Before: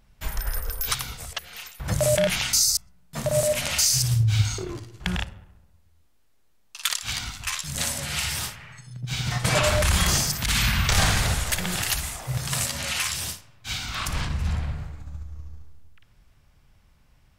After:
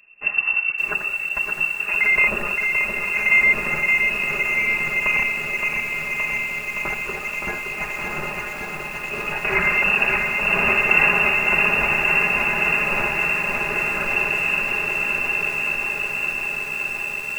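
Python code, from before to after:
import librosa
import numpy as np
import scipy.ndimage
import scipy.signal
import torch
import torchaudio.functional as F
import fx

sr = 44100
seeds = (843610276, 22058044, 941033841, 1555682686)

y = x + 0.77 * np.pad(x, (int(4.8 * sr / 1000.0), 0))[:len(x)]
y = fx.echo_diffused(y, sr, ms=1120, feedback_pct=56, wet_db=-5.0)
y = fx.freq_invert(y, sr, carrier_hz=2700)
y = fx.echo_crushed(y, sr, ms=569, feedback_pct=80, bits=7, wet_db=-4.5)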